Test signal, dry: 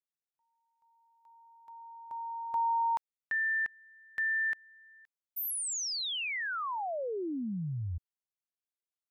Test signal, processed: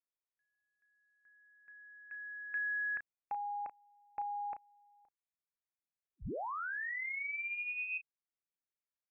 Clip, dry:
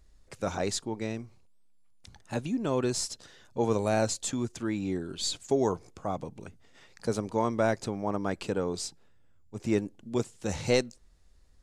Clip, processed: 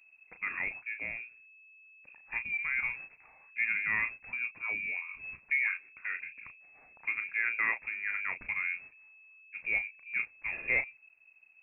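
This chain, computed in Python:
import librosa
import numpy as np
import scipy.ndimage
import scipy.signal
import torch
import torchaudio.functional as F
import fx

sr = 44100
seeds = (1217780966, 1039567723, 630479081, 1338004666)

y = fx.doubler(x, sr, ms=34.0, db=-9)
y = fx.freq_invert(y, sr, carrier_hz=2600)
y = y * 10.0 ** (-5.0 / 20.0)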